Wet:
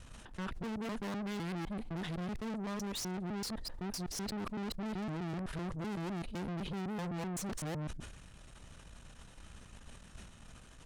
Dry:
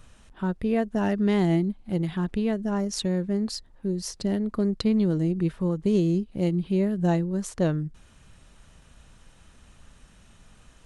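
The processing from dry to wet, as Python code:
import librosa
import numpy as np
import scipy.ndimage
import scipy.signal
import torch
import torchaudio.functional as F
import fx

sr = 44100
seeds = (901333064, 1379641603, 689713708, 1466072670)

y = fx.local_reverse(x, sr, ms=127.0)
y = fx.tube_stage(y, sr, drive_db=40.0, bias=0.75)
y = fx.sustainer(y, sr, db_per_s=47.0)
y = y * librosa.db_to_amplitude(2.5)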